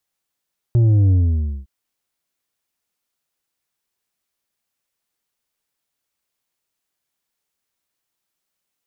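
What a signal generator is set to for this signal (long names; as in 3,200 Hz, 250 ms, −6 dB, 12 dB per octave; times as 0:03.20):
bass drop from 120 Hz, over 0.91 s, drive 6 dB, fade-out 0.55 s, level −11.5 dB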